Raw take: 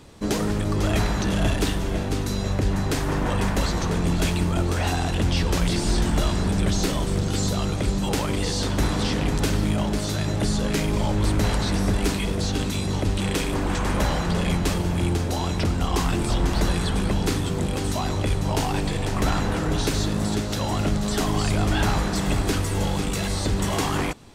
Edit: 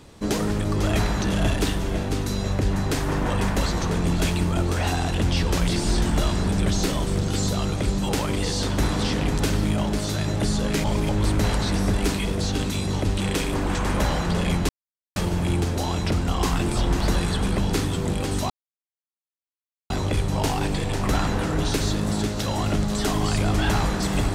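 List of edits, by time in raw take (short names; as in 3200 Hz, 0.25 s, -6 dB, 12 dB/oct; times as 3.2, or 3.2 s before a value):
10.84–11.09 reverse
14.69 insert silence 0.47 s
18.03 insert silence 1.40 s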